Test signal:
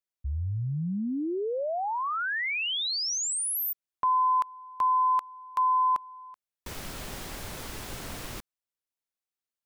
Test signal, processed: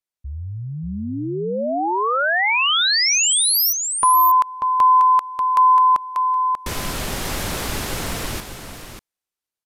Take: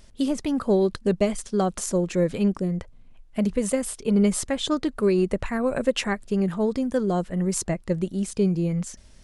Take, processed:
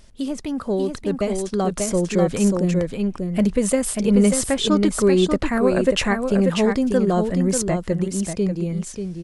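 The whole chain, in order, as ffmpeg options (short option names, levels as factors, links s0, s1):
-filter_complex "[0:a]asplit=2[s0][s1];[s1]acompressor=threshold=0.0316:ratio=6:attack=0.61:release=110:knee=1:detection=rms,volume=0.891[s2];[s0][s2]amix=inputs=2:normalize=0,aecho=1:1:589:0.531,aresample=32000,aresample=44100,dynaudnorm=f=120:g=31:m=3.98,volume=0.631"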